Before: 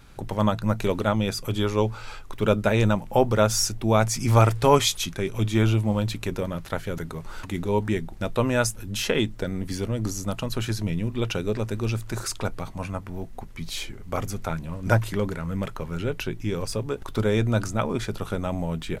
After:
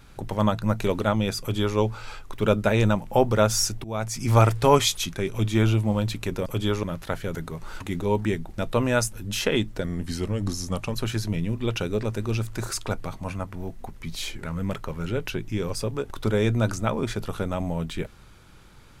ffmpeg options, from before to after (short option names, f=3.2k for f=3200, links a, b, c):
-filter_complex "[0:a]asplit=7[a][b][c][d][e][f][g];[a]atrim=end=3.84,asetpts=PTS-STARTPTS,afade=t=out:st=3.836:d=0.004:c=hsin:silence=0.133352[h];[b]atrim=start=3.84:end=6.462,asetpts=PTS-STARTPTS,afade=t=in:d=0.54:silence=0.133352[i];[c]atrim=start=1.398:end=1.772[j];[d]atrim=start=6.458:end=9.474[k];[e]atrim=start=9.47:end=10.48,asetpts=PTS-STARTPTS,asetrate=40572,aresample=44100,atrim=end_sample=48414,asetpts=PTS-STARTPTS[l];[f]atrim=start=10.476:end=13.972[m];[g]atrim=start=15.348[n];[h][i]concat=n=2:v=0:a=1[o];[o][j]acrossfade=d=0.004:c1=hsin:c2=hsin[p];[p][k]acrossfade=d=0.004:c1=hsin:c2=hsin[q];[q][l]acrossfade=d=0.004:c1=hsin:c2=hsin[r];[r][m]acrossfade=d=0.004:c1=hsin:c2=hsin[s];[s][n]acrossfade=d=0.004:c1=hsin:c2=hsin"